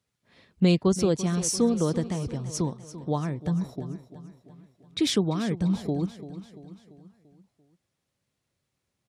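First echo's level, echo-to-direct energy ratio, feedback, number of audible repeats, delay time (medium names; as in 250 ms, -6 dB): -14.0 dB, -12.5 dB, 52%, 4, 341 ms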